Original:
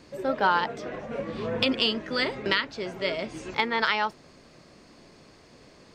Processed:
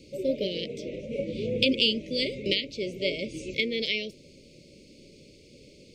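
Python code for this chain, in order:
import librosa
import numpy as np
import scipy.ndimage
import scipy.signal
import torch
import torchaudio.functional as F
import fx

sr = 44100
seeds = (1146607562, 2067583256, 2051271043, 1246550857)

y = scipy.signal.sosfilt(scipy.signal.cheby1(5, 1.0, [580.0, 2200.0], 'bandstop', fs=sr, output='sos'), x)
y = fx.dynamic_eq(y, sr, hz=370.0, q=2.7, threshold_db=-45.0, ratio=4.0, max_db=-4, at=(1.8, 2.49))
y = y * librosa.db_to_amplitude(2.0)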